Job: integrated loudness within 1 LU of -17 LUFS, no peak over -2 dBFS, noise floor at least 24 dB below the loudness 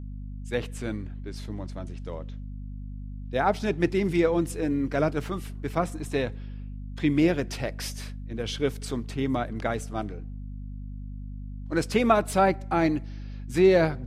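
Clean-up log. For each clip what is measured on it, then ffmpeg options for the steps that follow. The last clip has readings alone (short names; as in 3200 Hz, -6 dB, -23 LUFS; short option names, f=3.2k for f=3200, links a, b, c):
hum 50 Hz; harmonics up to 250 Hz; hum level -34 dBFS; loudness -27.0 LUFS; peak -7.0 dBFS; loudness target -17.0 LUFS
-> -af "bandreject=f=50:t=h:w=4,bandreject=f=100:t=h:w=4,bandreject=f=150:t=h:w=4,bandreject=f=200:t=h:w=4,bandreject=f=250:t=h:w=4"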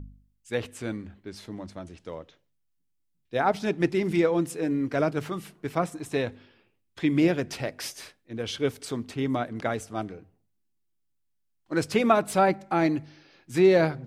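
hum none; loudness -27.0 LUFS; peak -7.5 dBFS; loudness target -17.0 LUFS
-> -af "volume=10dB,alimiter=limit=-2dB:level=0:latency=1"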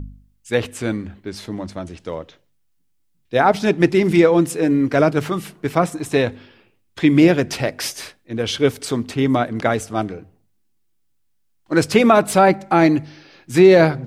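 loudness -17.5 LUFS; peak -2.0 dBFS; noise floor -63 dBFS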